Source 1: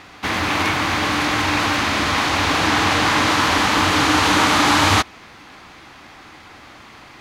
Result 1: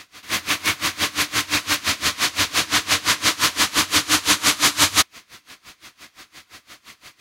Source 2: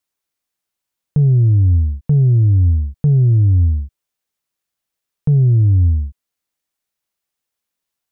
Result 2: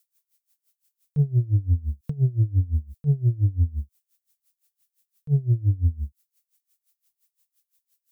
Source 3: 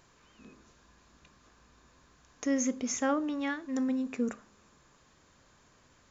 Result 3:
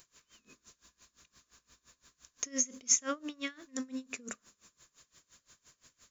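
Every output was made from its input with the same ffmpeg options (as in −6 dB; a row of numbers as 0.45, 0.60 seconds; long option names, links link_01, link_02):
-af "bandreject=frequency=830:width=5.4,crystalizer=i=6.5:c=0,aeval=exprs='val(0)*pow(10,-23*(0.5-0.5*cos(2*PI*5.8*n/s))/20)':channel_layout=same,volume=-4.5dB"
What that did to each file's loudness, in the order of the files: −2.0, −10.0, −2.0 LU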